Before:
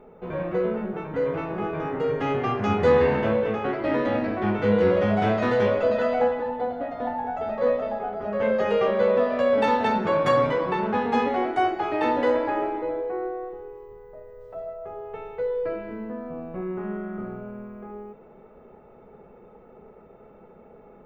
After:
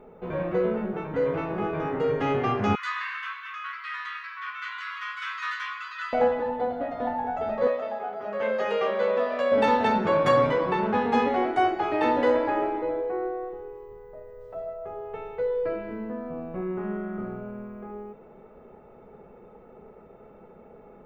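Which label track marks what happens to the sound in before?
2.750000	6.130000	brick-wall FIR high-pass 1000 Hz
7.670000	9.520000	HPF 630 Hz 6 dB/oct

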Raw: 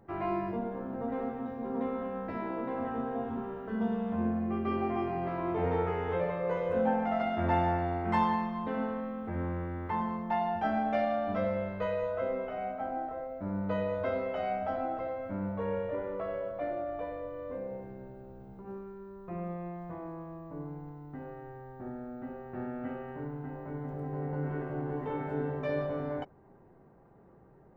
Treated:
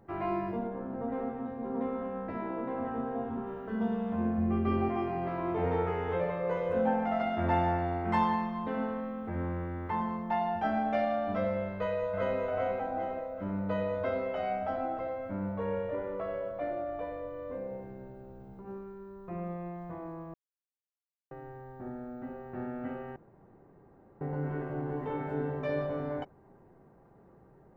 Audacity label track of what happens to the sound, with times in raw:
0.670000	3.470000	high shelf 3900 Hz -10 dB
4.380000	4.890000	low shelf 140 Hz +11.5 dB
11.730000	12.390000	echo throw 0.4 s, feedback 50%, level -1.5 dB
20.340000	21.310000	mute
23.160000	24.210000	room tone

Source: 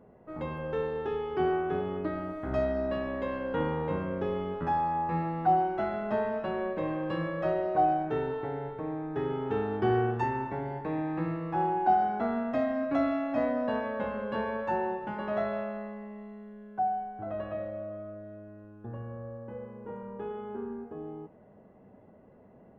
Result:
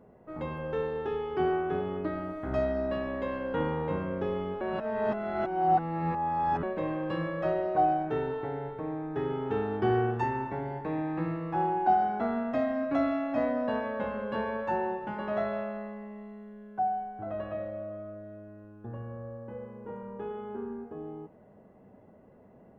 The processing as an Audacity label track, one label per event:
4.610000	6.630000	reverse

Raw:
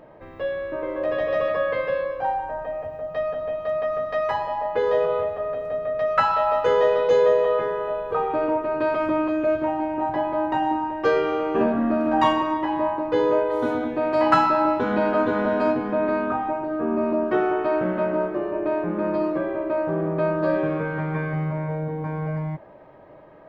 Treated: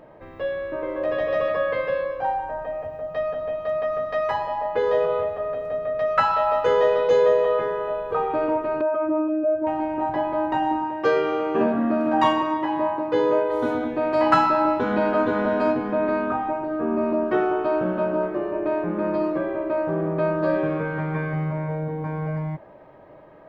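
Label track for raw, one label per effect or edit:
8.810000	9.670000	spectral contrast raised exponent 1.7
10.820000	13.500000	HPF 91 Hz
17.440000	18.230000	bell 2000 Hz -12.5 dB 0.25 oct

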